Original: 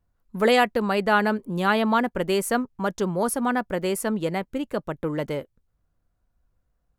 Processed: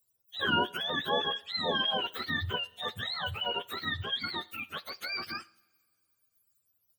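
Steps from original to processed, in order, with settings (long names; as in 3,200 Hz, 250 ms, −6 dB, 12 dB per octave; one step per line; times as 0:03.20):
frequency axis turned over on the octave scale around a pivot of 840 Hz
first-order pre-emphasis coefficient 0.8
coupled-rooms reverb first 0.63 s, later 2.4 s, from −18 dB, DRR 18 dB
level +4 dB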